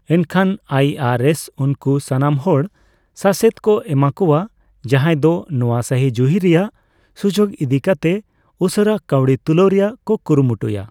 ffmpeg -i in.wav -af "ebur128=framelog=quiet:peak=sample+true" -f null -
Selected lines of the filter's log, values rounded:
Integrated loudness:
  I:         -16.7 LUFS
  Threshold: -27.0 LUFS
Loudness range:
  LRA:         1.2 LU
  Threshold: -37.2 LUFS
  LRA low:   -17.8 LUFS
  LRA high:  -16.6 LUFS
Sample peak:
  Peak:       -1.6 dBFS
True peak:
  Peak:       -1.6 dBFS